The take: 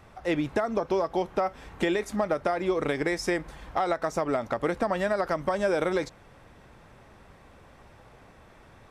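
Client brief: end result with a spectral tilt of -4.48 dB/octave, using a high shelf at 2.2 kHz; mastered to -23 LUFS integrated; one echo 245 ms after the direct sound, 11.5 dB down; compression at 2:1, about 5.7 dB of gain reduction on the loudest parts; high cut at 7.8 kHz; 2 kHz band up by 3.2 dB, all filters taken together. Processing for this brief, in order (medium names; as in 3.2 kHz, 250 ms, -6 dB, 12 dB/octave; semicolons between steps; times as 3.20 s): low-pass 7.8 kHz; peaking EQ 2 kHz +6 dB; treble shelf 2.2 kHz -4.5 dB; compression 2:1, threshold -32 dBFS; delay 245 ms -11.5 dB; trim +10 dB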